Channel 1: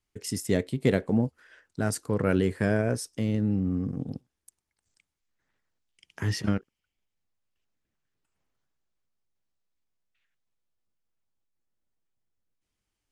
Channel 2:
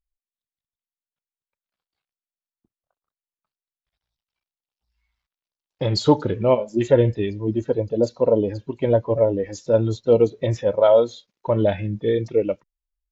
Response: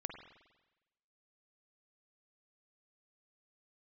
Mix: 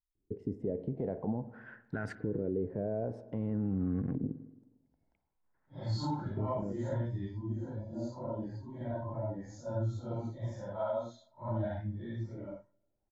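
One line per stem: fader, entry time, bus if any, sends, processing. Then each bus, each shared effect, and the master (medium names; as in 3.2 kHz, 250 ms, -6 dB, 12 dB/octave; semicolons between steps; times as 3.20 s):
-0.5 dB, 0.15 s, send -6.5 dB, compression, threshold -27 dBFS, peak gain reduction 10.5 dB; peak limiter -23.5 dBFS, peak gain reduction 7.5 dB; LFO low-pass saw up 0.5 Hz 320–1900 Hz; auto duck -11 dB, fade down 0.25 s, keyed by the second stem
-10.5 dB, 0.00 s, send -19.5 dB, phase randomisation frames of 200 ms; treble shelf 4.9 kHz -9 dB; static phaser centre 1.1 kHz, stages 4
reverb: on, RT60 1.1 s, pre-delay 45 ms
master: band-stop 1.2 kHz, Q 7.1; peak limiter -25.5 dBFS, peak gain reduction 7.5 dB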